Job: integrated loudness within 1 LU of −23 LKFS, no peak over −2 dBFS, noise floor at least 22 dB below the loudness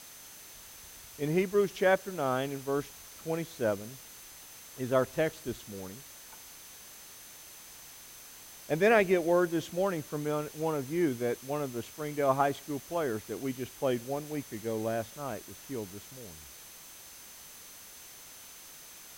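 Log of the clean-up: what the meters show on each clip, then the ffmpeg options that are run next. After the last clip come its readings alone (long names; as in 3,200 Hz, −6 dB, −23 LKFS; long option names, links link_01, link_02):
interfering tone 6,200 Hz; level of the tone −55 dBFS; background noise floor −50 dBFS; target noise floor −54 dBFS; integrated loudness −31.5 LKFS; sample peak −12.5 dBFS; target loudness −23.0 LKFS
→ -af "bandreject=frequency=6200:width=30"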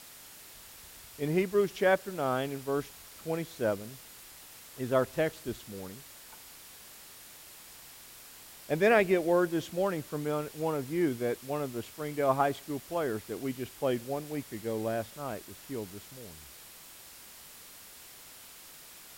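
interfering tone none found; background noise floor −51 dBFS; target noise floor −54 dBFS
→ -af "afftdn=noise_reduction=6:noise_floor=-51"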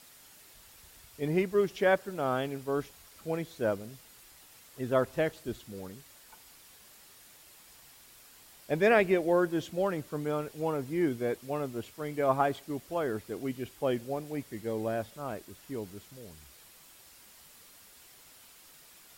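background noise floor −56 dBFS; integrated loudness −31.5 LKFS; sample peak −12.5 dBFS; target loudness −23.0 LKFS
→ -af "volume=8.5dB"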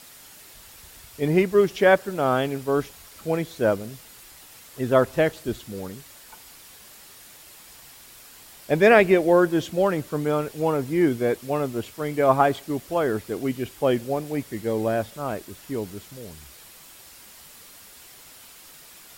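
integrated loudness −23.0 LKFS; sample peak −4.0 dBFS; background noise floor −48 dBFS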